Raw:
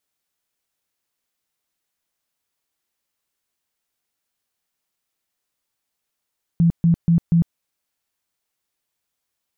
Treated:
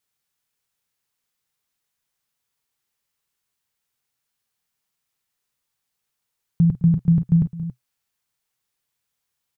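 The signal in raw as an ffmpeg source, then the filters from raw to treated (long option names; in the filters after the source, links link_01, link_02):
-f lavfi -i "aevalsrc='0.266*sin(2*PI*168*mod(t,0.24))*lt(mod(t,0.24),17/168)':duration=0.96:sample_rate=44100"
-af "equalizer=frequency=125:width_type=o:width=0.33:gain=7,equalizer=frequency=315:width_type=o:width=0.33:gain=-7,equalizer=frequency=630:width_type=o:width=0.33:gain=-6,aecho=1:1:50|211|278:0.188|0.119|0.211"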